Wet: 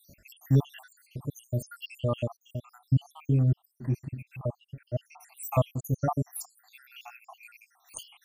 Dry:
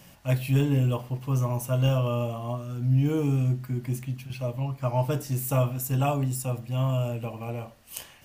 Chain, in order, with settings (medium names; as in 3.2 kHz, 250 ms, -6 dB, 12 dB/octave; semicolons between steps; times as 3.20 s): random holes in the spectrogram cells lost 80%; 3.12–5.40 s: treble shelf 2.8 kHz -11.5 dB; trim +1.5 dB